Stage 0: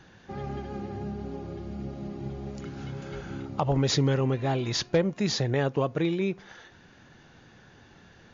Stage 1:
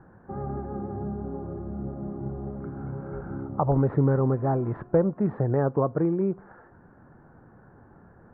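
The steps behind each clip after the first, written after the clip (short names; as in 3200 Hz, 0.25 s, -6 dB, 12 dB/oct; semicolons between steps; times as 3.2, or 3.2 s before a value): steep low-pass 1400 Hz 36 dB/oct; gain +2.5 dB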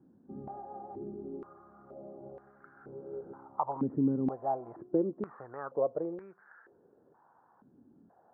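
stepped band-pass 2.1 Hz 260–1600 Hz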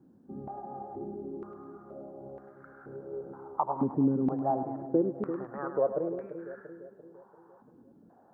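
split-band echo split 540 Hz, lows 0.342 s, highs 0.104 s, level -9 dB; gain +2.5 dB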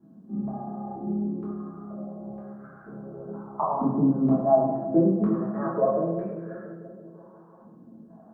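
small resonant body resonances 210/650/1100 Hz, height 11 dB, ringing for 70 ms; reverb RT60 0.65 s, pre-delay 3 ms, DRR -6.5 dB; gain -5.5 dB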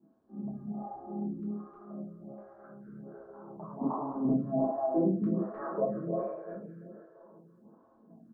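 on a send: echo 0.308 s -5 dB; on the sum: photocell phaser 1.3 Hz; gain -5.5 dB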